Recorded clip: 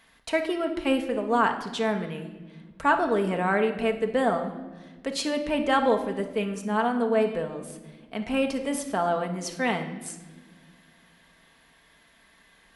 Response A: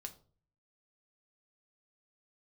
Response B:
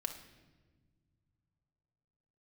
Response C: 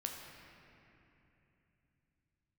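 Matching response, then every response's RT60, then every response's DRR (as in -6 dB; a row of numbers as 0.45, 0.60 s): B; 0.45 s, not exponential, 3.0 s; 4.5, 4.0, 0.5 dB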